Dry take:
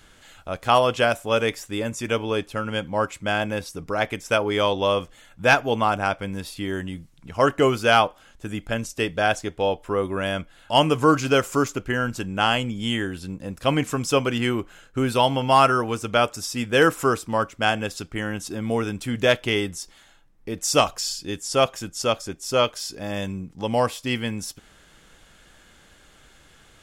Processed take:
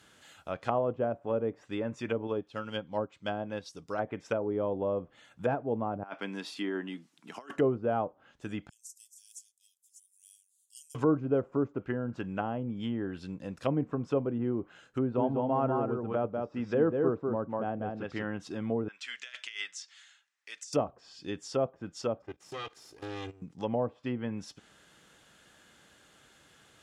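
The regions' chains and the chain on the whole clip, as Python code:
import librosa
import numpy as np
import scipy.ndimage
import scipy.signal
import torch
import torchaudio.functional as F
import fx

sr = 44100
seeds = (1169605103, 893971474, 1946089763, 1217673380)

y = fx.chain(x, sr, fx.high_shelf_res(hz=2900.0, db=6.0, q=1.5),
    fx.upward_expand(threshold_db=-38.0, expansion=1.5), at=(2.27, 3.99))
y = fx.chain(y, sr, fx.highpass(hz=230.0, slope=24),
    fx.peak_eq(hz=530.0, db=-9.5, octaves=0.35),
    fx.over_compress(threshold_db=-29.0, ratio=-0.5), at=(6.03, 7.56))
y = fx.chain(y, sr, fx.reverse_delay(ms=328, wet_db=-9),
    fx.cheby2_highpass(hz=1300.0, order=4, stop_db=80), at=(8.69, 10.95))
y = fx.chain(y, sr, fx.lowpass(hz=6000.0, slope=12),
    fx.low_shelf(hz=83.0, db=-3.0),
    fx.echo_single(ms=195, db=-3.5), at=(14.98, 18.27))
y = fx.chain(y, sr, fx.cheby1_bandpass(low_hz=1800.0, high_hz=7400.0, order=2),
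    fx.over_compress(threshold_db=-32.0, ratio=-0.5), at=(18.88, 20.73))
y = fx.chain(y, sr, fx.lower_of_two(delay_ms=2.5),
    fx.level_steps(step_db=16), at=(22.22, 23.42))
y = fx.env_lowpass_down(y, sr, base_hz=560.0, full_db=-19.5)
y = scipy.signal.sosfilt(scipy.signal.butter(2, 110.0, 'highpass', fs=sr, output='sos'), y)
y = fx.notch(y, sr, hz=2200.0, q=27.0)
y = F.gain(torch.from_numpy(y), -6.0).numpy()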